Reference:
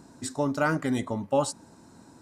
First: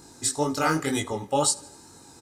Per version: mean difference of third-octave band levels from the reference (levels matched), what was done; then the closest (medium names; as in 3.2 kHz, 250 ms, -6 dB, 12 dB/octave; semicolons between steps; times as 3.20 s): 5.5 dB: treble shelf 3 kHz +12 dB; comb 2.4 ms, depth 53%; chorus 2 Hz, delay 19 ms, depth 6.8 ms; on a send: feedback delay 82 ms, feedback 53%, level -22.5 dB; on the sum: trim +3.5 dB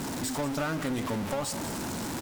15.5 dB: jump at every zero crossing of -27.5 dBFS; compression, threshold -24 dBFS, peak gain reduction 7 dB; one-sided clip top -31.5 dBFS; on a send: delay 188 ms -13.5 dB; on the sum: trim -1.5 dB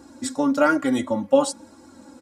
4.0 dB: small resonant body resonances 520/1400/2200/3300 Hz, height 9 dB, ringing for 85 ms; flange 1.1 Hz, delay 2.5 ms, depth 1.8 ms, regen -23%; high-pass 61 Hz; comb 3.6 ms, depth 61%; trim +6.5 dB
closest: third